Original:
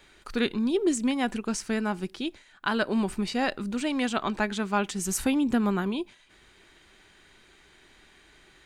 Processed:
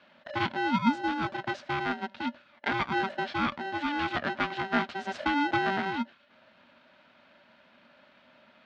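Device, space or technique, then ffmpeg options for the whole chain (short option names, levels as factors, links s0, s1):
ring modulator pedal into a guitar cabinet: -filter_complex "[0:a]aeval=exprs='val(0)*sgn(sin(2*PI*580*n/s))':c=same,highpass=79,equalizer=f=240:t=q:w=4:g=10,equalizer=f=440:t=q:w=4:g=-5,equalizer=f=630:t=q:w=4:g=7,equalizer=f=1500:t=q:w=4:g=7,lowpass=f=3900:w=0.5412,lowpass=f=3900:w=1.3066,asettb=1/sr,asplit=3[s0][s1][s2];[s0]atrim=end=0.884[s3];[s1]atrim=start=0.88:end=1.34,asetpts=PTS-STARTPTS,afade=t=in:d=0.004:c=qsin,afade=t=out:st=0.456:d=0.004:c=qsin,equalizer=f=2300:w=0.98:g=-5.5[s4];[s2]atrim=start=1.336[s5];[s3][s4]acrossfade=d=0.004:c1=hsin:c2=qsin[s6];[s6][s5]acrossfade=d=0.004:c1=qsin:c2=hsin,volume=0.596"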